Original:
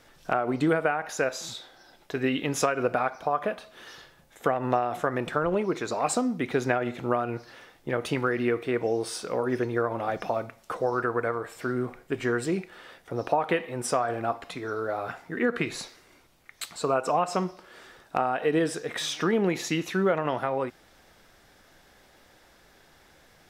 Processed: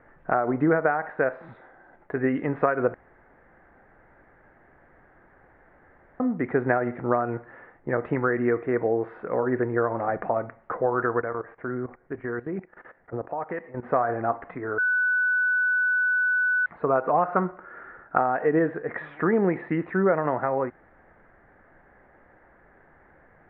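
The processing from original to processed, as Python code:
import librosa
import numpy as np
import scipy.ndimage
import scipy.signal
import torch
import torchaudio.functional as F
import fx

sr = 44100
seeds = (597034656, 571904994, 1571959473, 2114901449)

y = fx.level_steps(x, sr, step_db=16, at=(11.21, 13.83))
y = fx.peak_eq(y, sr, hz=1400.0, db=13.0, octaves=0.24, at=(17.25, 18.18))
y = fx.edit(y, sr, fx.room_tone_fill(start_s=2.94, length_s=3.26),
    fx.bleep(start_s=14.78, length_s=1.88, hz=1490.0, db=-22.0), tone=tone)
y = scipy.signal.sosfilt(scipy.signal.ellip(4, 1.0, 70, 1900.0, 'lowpass', fs=sr, output='sos'), y)
y = y * 10.0 ** (3.0 / 20.0)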